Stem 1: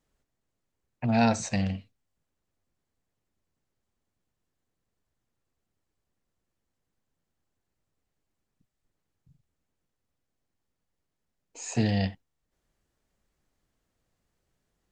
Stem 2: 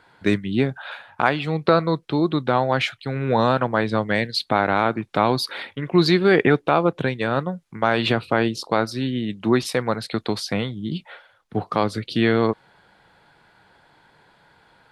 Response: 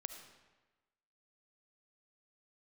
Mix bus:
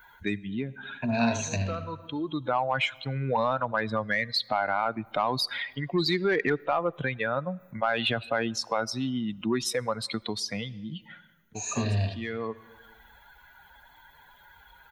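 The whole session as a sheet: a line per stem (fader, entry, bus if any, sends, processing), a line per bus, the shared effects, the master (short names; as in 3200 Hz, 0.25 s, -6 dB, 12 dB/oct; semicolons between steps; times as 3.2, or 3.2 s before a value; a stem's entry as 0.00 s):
-1.0 dB, 0.00 s, send -5 dB, echo send -4 dB, ripple EQ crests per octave 1.5, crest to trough 15 dB
-1.5 dB, 0.00 s, send -15 dB, no echo send, per-bin expansion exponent 2; overdrive pedal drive 11 dB, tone 4000 Hz, clips at -6.5 dBFS; fast leveller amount 50%; auto duck -17 dB, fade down 1.45 s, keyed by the first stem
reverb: on, RT60 1.2 s, pre-delay 30 ms
echo: echo 78 ms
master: compressor 1.5:1, threshold -36 dBFS, peak gain reduction 8.5 dB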